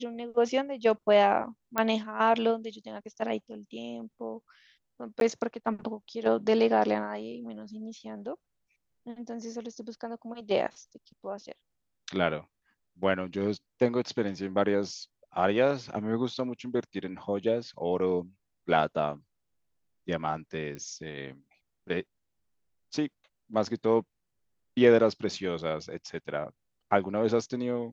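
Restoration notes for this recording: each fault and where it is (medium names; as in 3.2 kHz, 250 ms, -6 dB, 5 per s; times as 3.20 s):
1.78 s: pop -12 dBFS
5.20–5.21 s: dropout 12 ms
20.75 s: pop -27 dBFS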